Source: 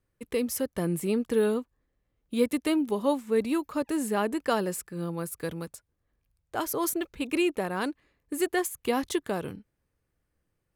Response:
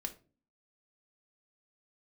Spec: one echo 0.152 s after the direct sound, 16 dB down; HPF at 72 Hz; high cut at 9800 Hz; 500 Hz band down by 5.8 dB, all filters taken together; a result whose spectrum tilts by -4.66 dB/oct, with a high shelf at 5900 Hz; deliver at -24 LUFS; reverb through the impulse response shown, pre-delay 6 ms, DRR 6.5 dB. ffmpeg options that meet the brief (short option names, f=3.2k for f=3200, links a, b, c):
-filter_complex "[0:a]highpass=72,lowpass=9.8k,equalizer=f=500:t=o:g=-7.5,highshelf=f=5.9k:g=4,aecho=1:1:152:0.158,asplit=2[a][b];[1:a]atrim=start_sample=2205,adelay=6[c];[b][c]afir=irnorm=-1:irlink=0,volume=-5.5dB[d];[a][d]amix=inputs=2:normalize=0,volume=7dB"